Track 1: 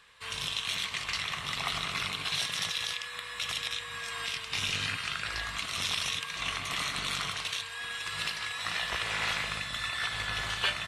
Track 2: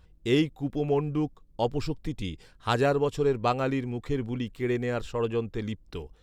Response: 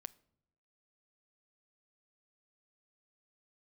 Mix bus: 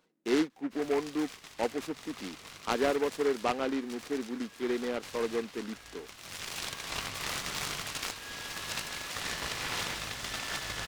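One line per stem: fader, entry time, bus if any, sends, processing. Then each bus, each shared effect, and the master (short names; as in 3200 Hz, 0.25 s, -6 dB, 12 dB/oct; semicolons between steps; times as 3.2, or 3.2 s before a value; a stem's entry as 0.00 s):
-9.0 dB, 0.50 s, send -8.5 dB, high shelf 2400 Hz +8.5 dB; auto duck -22 dB, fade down 0.65 s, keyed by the second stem
-4.5 dB, 0.00 s, no send, steep high-pass 220 Hz 36 dB/oct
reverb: on, pre-delay 7 ms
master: low shelf 210 Hz +5 dB; noise-modulated delay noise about 1300 Hz, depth 0.069 ms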